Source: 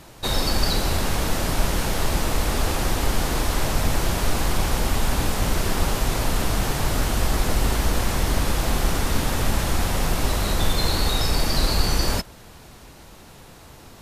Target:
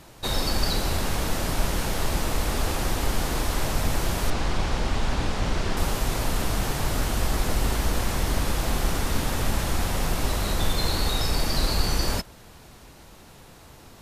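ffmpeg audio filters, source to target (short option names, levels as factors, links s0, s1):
-filter_complex "[0:a]asettb=1/sr,asplit=3[s0][s1][s2];[s0]atrim=end=4.304[s3];[s1]atrim=start=4.3:end=5.77,asetpts=PTS-STARTPTS,afade=t=in:d=0.004:c=qsin,afade=t=out:st=1.466:d=0.004:c=qsin,lowpass=5600[s4];[s2]atrim=start=5.766[s5];[s3][s4]acrossfade=d=0.004:c1=hsin:c2=qsin[s6];[s6][s5]acrossfade=d=0.004:c1=qsin:c2=hsin,volume=0.708"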